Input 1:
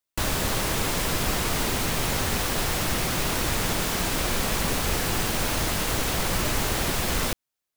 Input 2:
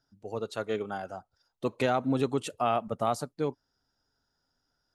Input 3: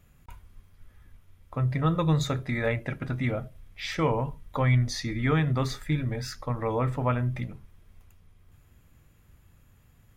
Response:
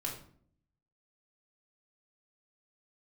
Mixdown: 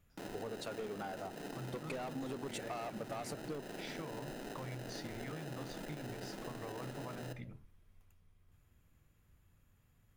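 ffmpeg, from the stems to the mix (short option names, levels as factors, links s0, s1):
-filter_complex "[0:a]alimiter=limit=0.126:level=0:latency=1:release=18,acrusher=samples=39:mix=1:aa=0.000001,highpass=f=170:w=0.5412,highpass=f=170:w=1.3066,volume=0.168,asplit=2[s0][s1];[s1]volume=0.355[s2];[1:a]asoftclip=type=tanh:threshold=0.0398,adelay=100,volume=1.33[s3];[2:a]acompressor=threshold=0.0398:ratio=6,volume=0.299[s4];[s3][s4]amix=inputs=2:normalize=0,bandreject=f=60:t=h:w=6,bandreject=f=120:t=h:w=6,acompressor=threshold=0.0224:ratio=6,volume=1[s5];[3:a]atrim=start_sample=2205[s6];[s2][s6]afir=irnorm=-1:irlink=0[s7];[s0][s5][s7]amix=inputs=3:normalize=0,acompressor=threshold=0.00794:ratio=2.5"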